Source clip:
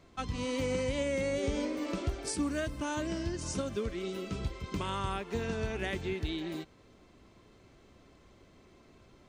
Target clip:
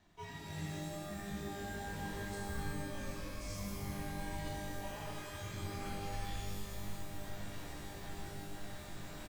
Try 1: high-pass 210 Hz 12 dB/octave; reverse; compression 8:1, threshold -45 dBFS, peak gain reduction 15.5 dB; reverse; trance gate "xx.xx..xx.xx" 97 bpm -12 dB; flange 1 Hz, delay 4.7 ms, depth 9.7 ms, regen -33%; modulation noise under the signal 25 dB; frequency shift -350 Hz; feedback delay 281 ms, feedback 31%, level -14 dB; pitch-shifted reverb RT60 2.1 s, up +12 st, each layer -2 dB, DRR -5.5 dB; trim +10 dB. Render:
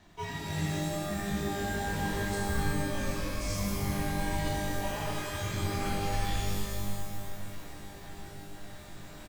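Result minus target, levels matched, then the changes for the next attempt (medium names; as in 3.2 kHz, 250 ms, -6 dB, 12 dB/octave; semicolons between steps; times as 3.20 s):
compression: peak gain reduction -10 dB
change: compression 8:1, threshold -56.5 dBFS, peak gain reduction 25.5 dB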